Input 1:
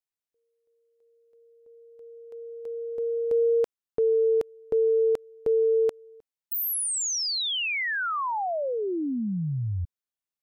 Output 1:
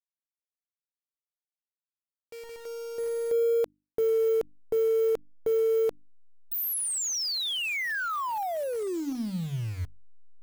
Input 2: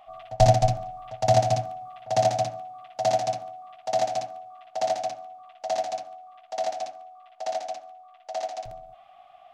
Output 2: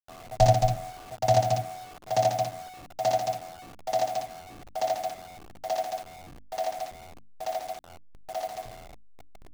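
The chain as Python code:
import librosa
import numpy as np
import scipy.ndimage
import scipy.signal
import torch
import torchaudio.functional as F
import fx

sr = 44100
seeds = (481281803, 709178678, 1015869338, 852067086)

y = fx.delta_hold(x, sr, step_db=-37.5)
y = fx.hum_notches(y, sr, base_hz=50, count=6)
y = y * 10.0 ** (-2.0 / 20.0)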